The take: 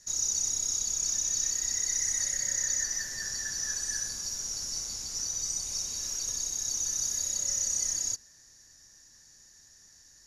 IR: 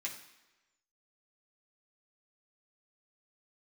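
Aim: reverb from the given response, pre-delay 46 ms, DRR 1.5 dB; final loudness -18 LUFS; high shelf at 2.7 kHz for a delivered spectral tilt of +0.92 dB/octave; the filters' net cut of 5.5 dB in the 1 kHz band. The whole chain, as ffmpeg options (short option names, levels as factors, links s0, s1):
-filter_complex "[0:a]equalizer=f=1000:t=o:g=-8.5,highshelf=f=2700:g=6,asplit=2[s0][s1];[1:a]atrim=start_sample=2205,adelay=46[s2];[s1][s2]afir=irnorm=-1:irlink=0,volume=0.794[s3];[s0][s3]amix=inputs=2:normalize=0,volume=1.5"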